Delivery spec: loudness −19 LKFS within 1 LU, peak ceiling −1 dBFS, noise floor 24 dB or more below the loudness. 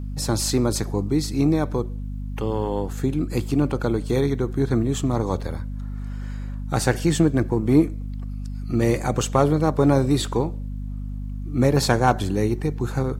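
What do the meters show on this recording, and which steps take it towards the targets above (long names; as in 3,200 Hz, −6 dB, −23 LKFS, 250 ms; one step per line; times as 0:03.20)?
mains hum 50 Hz; hum harmonics up to 250 Hz; level of the hum −27 dBFS; integrated loudness −22.5 LKFS; sample peak −3.0 dBFS; target loudness −19.0 LKFS
→ hum removal 50 Hz, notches 5
level +3.5 dB
brickwall limiter −1 dBFS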